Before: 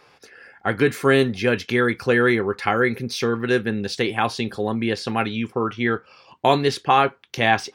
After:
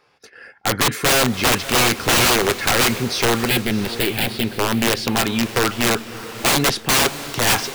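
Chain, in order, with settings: wrapped overs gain 15.5 dB; 3.47–4.59 fixed phaser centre 2700 Hz, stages 4; gate -46 dBFS, range -11 dB; on a send: diffused feedback echo 0.636 s, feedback 40%, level -13 dB; on the sum: gain +5 dB

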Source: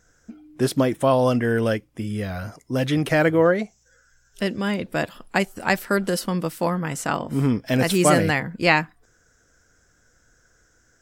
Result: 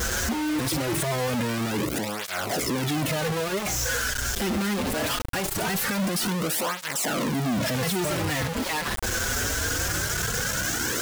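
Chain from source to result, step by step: infinite clipping; tape flanging out of phase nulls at 0.22 Hz, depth 7.1 ms

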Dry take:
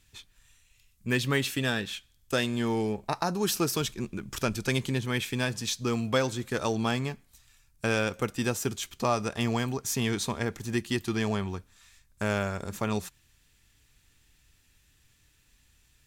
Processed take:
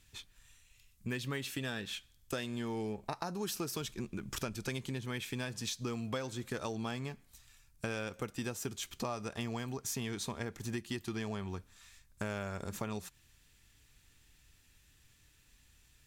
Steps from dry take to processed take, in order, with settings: compressor 4:1, threshold -35 dBFS, peak gain reduction 12.5 dB; gain -1 dB

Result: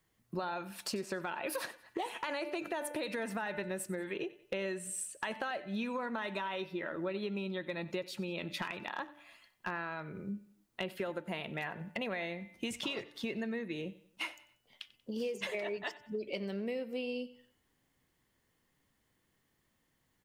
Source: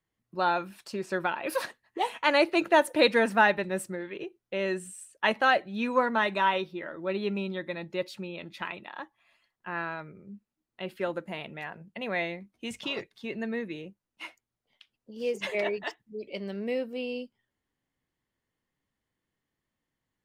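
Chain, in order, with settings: high shelf 7100 Hz +5 dB; de-hum 294.6 Hz, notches 11; limiter -21 dBFS, peak gain reduction 11.5 dB; compressor 10:1, threshold -42 dBFS, peak gain reduction 16.5 dB; overloaded stage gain 33.5 dB; on a send: feedback echo 93 ms, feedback 42%, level -19 dB; on the sum: gain +7.5 dB

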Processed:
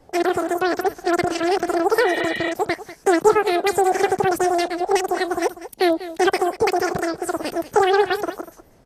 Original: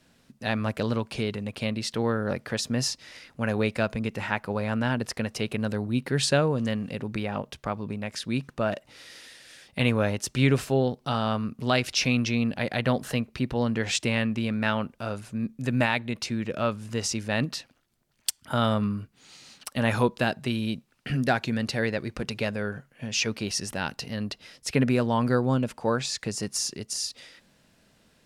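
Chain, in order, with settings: RIAA curve playback; echo 0.619 s -14.5 dB; wide varispeed 3.19×; spectral repair 2.07–2.49, 1800–4200 Hz before; Vorbis 32 kbps 48000 Hz

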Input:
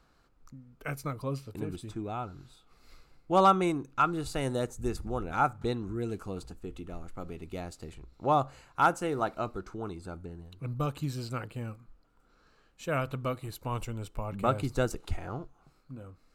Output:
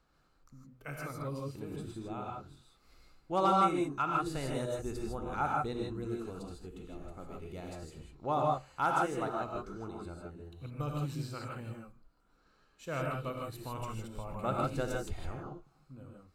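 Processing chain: non-linear reverb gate 0.18 s rising, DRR -1 dB; gain -7.5 dB

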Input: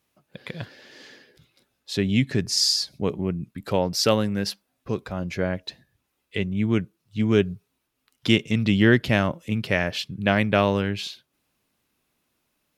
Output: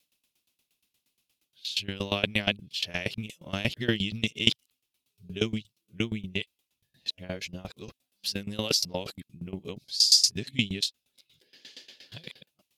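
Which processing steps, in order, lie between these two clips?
whole clip reversed; resonant high shelf 2200 Hz +10.5 dB, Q 1.5; dB-ramp tremolo decaying 8.5 Hz, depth 20 dB; gain -4 dB

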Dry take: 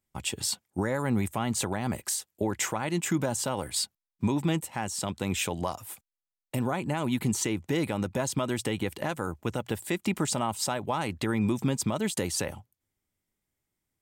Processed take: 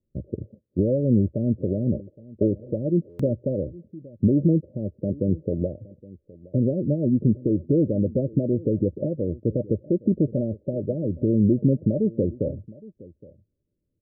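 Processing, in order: Chebyshev low-pass 600 Hz, order 8; outdoor echo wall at 140 m, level -21 dB; stuck buffer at 3.09, samples 512, times 8; gain +8.5 dB

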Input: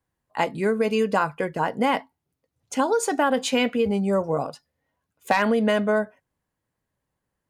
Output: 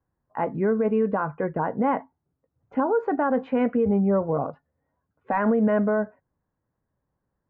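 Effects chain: LPF 1600 Hz 24 dB/oct; low shelf 380 Hz +3.5 dB; limiter -14.5 dBFS, peak gain reduction 8 dB

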